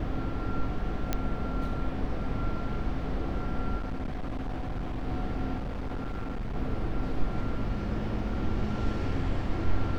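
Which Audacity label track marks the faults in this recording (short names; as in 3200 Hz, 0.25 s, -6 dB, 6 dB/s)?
1.130000	1.130000	pop -13 dBFS
3.770000	5.080000	clipped -29.5 dBFS
5.560000	6.560000	clipped -30 dBFS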